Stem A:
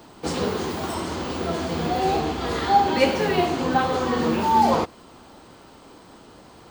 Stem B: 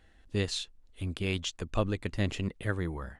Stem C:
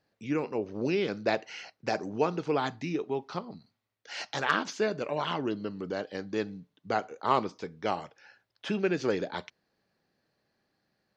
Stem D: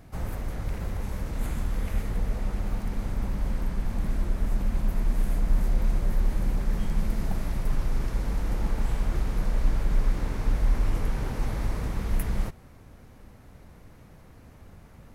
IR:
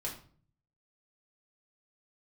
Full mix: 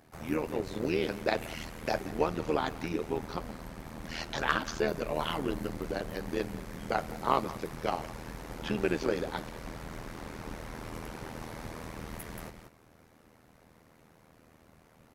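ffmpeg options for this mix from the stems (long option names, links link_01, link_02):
-filter_complex "[1:a]adelay=150,volume=-13dB[link_01];[2:a]volume=2dB,asplit=2[link_02][link_03];[link_03]volume=-18dB[link_04];[3:a]lowshelf=frequency=140:gain=-9.5,volume=-1dB,asplit=2[link_05][link_06];[link_06]volume=-8.5dB[link_07];[link_04][link_07]amix=inputs=2:normalize=0,aecho=0:1:182:1[link_08];[link_01][link_02][link_05][link_08]amix=inputs=4:normalize=0,highpass=frequency=100:poles=1,tremolo=f=80:d=0.824"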